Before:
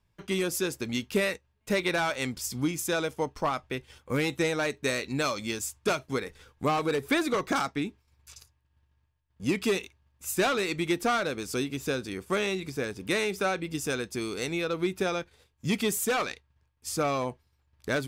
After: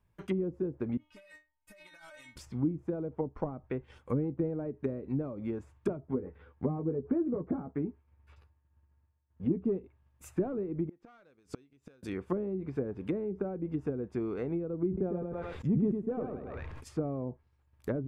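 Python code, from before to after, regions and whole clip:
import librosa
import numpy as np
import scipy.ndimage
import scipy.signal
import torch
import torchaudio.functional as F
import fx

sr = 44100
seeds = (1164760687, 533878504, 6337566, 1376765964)

y = fx.chain(x, sr, fx.peak_eq(hz=350.0, db=-14.5, octaves=1.2),
    fx.stiff_resonator(f0_hz=300.0, decay_s=0.28, stiffness=0.002),
    fx.over_compress(threshold_db=-51.0, ratio=-1.0), at=(0.97, 2.36))
y = fx.chain(y, sr, fx.highpass(hz=43.0, slope=12),
    fx.air_absorb(metres=420.0),
    fx.doubler(ms=12.0, db=-6.5), at=(6.0, 9.65))
y = fx.chain(y, sr, fx.lowpass(hz=6300.0, slope=12),
    fx.gate_flip(shuts_db=-24.0, range_db=-31), at=(10.89, 12.03))
y = fx.chain(y, sr, fx.echo_feedback(ms=103, feedback_pct=22, wet_db=-5),
    fx.sustainer(db_per_s=34.0), at=(14.87, 16.9))
y = fx.env_lowpass_down(y, sr, base_hz=350.0, full_db=-26.0)
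y = fx.peak_eq(y, sr, hz=4800.0, db=-11.0, octaves=1.8)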